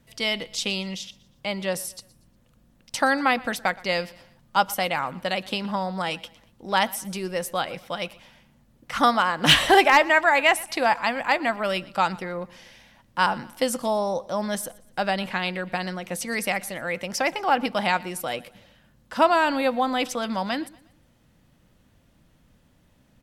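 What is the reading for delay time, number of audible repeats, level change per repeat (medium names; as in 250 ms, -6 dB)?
119 ms, 2, -7.5 dB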